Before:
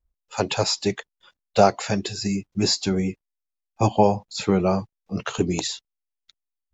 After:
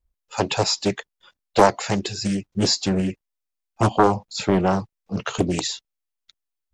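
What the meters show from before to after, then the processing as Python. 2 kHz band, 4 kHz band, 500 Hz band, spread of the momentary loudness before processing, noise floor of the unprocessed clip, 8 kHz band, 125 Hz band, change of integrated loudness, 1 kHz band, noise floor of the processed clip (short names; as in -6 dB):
+3.0 dB, +1.5 dB, 0.0 dB, 11 LU, -84 dBFS, n/a, +1.0 dB, +1.0 dB, +2.5 dB, -83 dBFS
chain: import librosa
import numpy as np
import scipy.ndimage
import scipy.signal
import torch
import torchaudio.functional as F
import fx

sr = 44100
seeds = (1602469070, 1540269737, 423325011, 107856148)

y = fx.doppler_dist(x, sr, depth_ms=0.66)
y = y * librosa.db_to_amplitude(1.5)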